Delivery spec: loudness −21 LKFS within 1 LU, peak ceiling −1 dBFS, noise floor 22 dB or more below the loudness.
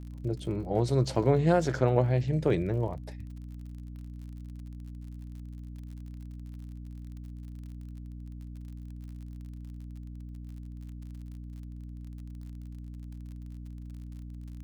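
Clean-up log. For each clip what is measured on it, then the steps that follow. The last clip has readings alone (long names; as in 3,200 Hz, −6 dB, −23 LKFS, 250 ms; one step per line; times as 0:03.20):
crackle rate 46 per second; mains hum 60 Hz; hum harmonics up to 300 Hz; level of the hum −39 dBFS; integrated loudness −28.0 LKFS; sample peak −10.5 dBFS; target loudness −21.0 LKFS
→ click removal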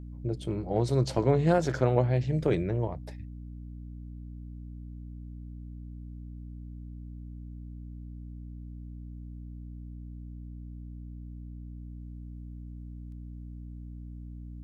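crackle rate 0.14 per second; mains hum 60 Hz; hum harmonics up to 300 Hz; level of the hum −39 dBFS
→ mains-hum notches 60/120/180/240/300 Hz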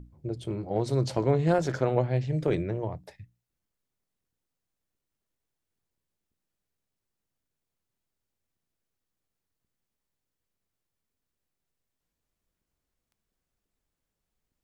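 mains hum none found; integrated loudness −28.0 LKFS; sample peak −11.5 dBFS; target loudness −21.0 LKFS
→ level +7 dB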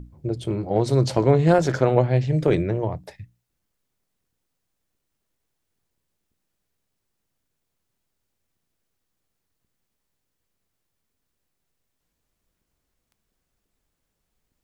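integrated loudness −21.0 LKFS; sample peak −4.5 dBFS; background noise floor −78 dBFS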